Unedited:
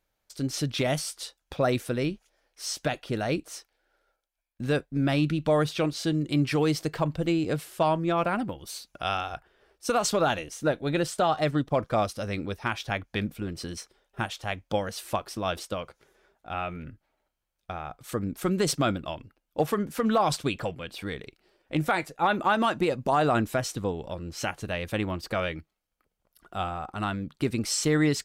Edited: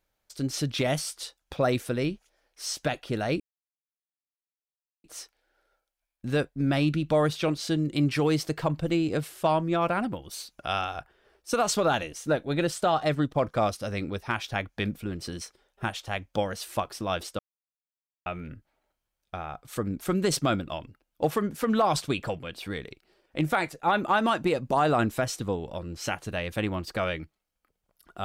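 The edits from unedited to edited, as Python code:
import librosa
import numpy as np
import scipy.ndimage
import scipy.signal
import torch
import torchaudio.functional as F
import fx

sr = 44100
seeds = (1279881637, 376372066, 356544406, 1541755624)

y = fx.edit(x, sr, fx.insert_silence(at_s=3.4, length_s=1.64),
    fx.silence(start_s=15.75, length_s=0.87), tone=tone)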